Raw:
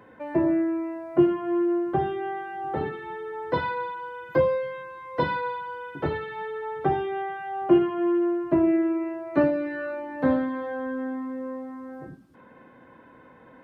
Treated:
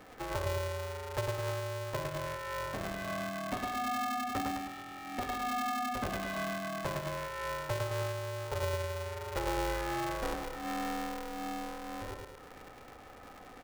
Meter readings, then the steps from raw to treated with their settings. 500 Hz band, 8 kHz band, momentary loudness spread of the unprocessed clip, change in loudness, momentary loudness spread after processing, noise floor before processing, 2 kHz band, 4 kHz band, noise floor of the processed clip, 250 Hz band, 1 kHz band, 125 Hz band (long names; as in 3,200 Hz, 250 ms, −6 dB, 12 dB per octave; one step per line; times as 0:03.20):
−11.5 dB, can't be measured, 13 LU, −9.5 dB, 10 LU, −52 dBFS, −4.0 dB, +4.5 dB, −52 dBFS, −16.0 dB, −5.0 dB, −1.5 dB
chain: downward compressor 4 to 1, threshold −34 dBFS, peak gain reduction 17.5 dB
repeating echo 106 ms, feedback 52%, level −3.5 dB
ring modulator with a square carrier 240 Hz
level −2 dB